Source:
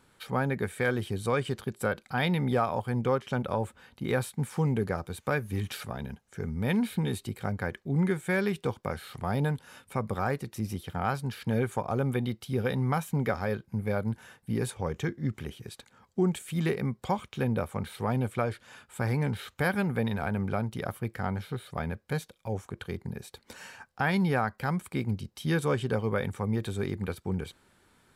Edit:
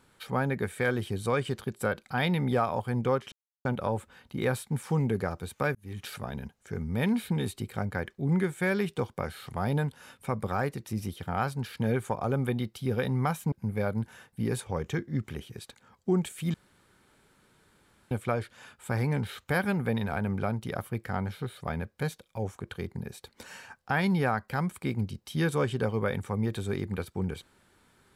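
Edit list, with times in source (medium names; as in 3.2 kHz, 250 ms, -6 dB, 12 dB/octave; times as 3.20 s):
3.32 s: insert silence 0.33 s
5.42–5.85 s: fade in
13.19–13.62 s: delete
16.64–18.21 s: room tone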